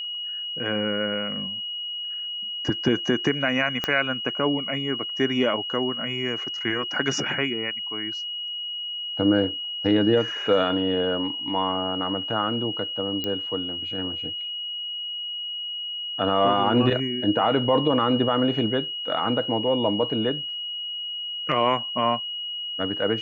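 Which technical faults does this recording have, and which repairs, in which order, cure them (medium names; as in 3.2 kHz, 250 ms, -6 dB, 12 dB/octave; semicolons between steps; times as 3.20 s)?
whine 2.9 kHz -29 dBFS
3.84 s: pop -10 dBFS
13.24 s: pop -14 dBFS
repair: de-click; band-stop 2.9 kHz, Q 30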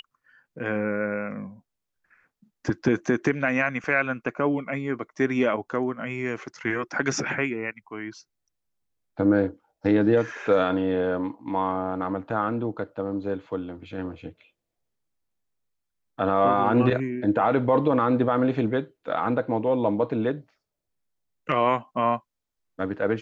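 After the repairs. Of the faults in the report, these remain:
3.84 s: pop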